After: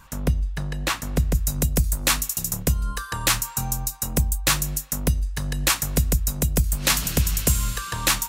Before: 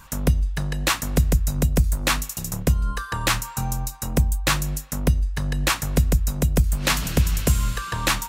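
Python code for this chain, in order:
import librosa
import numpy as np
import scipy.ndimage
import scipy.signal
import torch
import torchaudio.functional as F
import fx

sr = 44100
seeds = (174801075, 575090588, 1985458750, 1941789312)

y = fx.high_shelf(x, sr, hz=4500.0, db=fx.steps((0.0, -3.0), (1.34, 9.5)))
y = y * librosa.db_to_amplitude(-2.5)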